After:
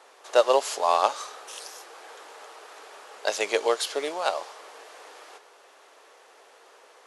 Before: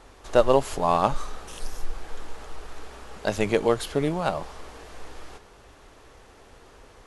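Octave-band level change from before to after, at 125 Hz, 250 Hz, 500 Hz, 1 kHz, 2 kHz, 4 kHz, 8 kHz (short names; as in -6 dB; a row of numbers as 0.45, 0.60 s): under -35 dB, -12.5 dB, -1.5 dB, +0.5 dB, +1.5 dB, +5.0 dB, +5.0 dB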